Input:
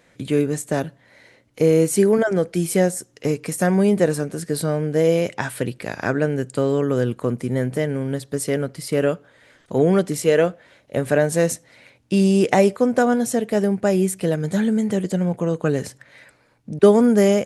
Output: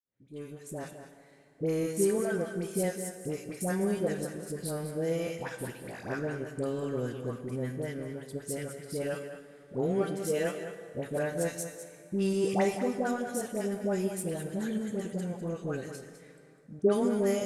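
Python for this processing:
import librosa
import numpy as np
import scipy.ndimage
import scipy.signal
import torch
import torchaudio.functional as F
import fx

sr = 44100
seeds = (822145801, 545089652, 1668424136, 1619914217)

p1 = fx.fade_in_head(x, sr, length_s=1.01)
p2 = fx.high_shelf(p1, sr, hz=9300.0, db=7.5)
p3 = fx.comb_fb(p2, sr, f0_hz=390.0, decay_s=0.62, harmonics='all', damping=0.0, mix_pct=70)
p4 = np.sign(p3) * np.maximum(np.abs(p3) - 10.0 ** (-36.0 / 20.0), 0.0)
p5 = p3 + (p4 * 10.0 ** (-7.5 / 20.0))
p6 = fx.dispersion(p5, sr, late='highs', ms=89.0, hz=920.0)
p7 = p6 + fx.echo_single(p6, sr, ms=203, db=-10.5, dry=0)
p8 = fx.rev_plate(p7, sr, seeds[0], rt60_s=2.7, hf_ratio=0.7, predelay_ms=0, drr_db=10.0)
y = p8 * 10.0 ** (-6.0 / 20.0)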